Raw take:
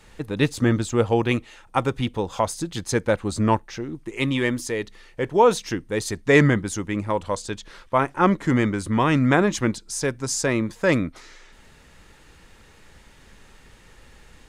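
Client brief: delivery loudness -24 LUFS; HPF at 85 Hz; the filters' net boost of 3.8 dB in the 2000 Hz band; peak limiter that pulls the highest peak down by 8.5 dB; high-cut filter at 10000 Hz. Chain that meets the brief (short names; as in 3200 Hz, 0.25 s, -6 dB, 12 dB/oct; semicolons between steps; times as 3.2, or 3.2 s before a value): HPF 85 Hz; LPF 10000 Hz; bell 2000 Hz +4.5 dB; limiter -9.5 dBFS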